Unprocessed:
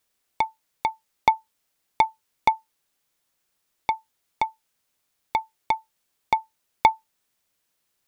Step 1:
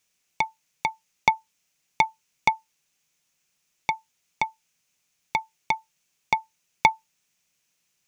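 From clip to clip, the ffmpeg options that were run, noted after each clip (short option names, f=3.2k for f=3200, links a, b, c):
-af "equalizer=f=160:t=o:w=0.67:g=10,equalizer=f=2.5k:t=o:w=0.67:g=9,equalizer=f=6.3k:t=o:w=0.67:g=11,volume=-3dB"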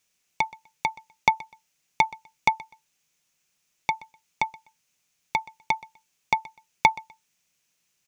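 -af "aecho=1:1:125|250:0.0841|0.0185"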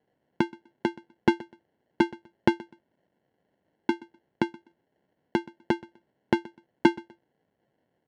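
-af "acrusher=samples=36:mix=1:aa=0.000001,highpass=130,lowpass=2.9k"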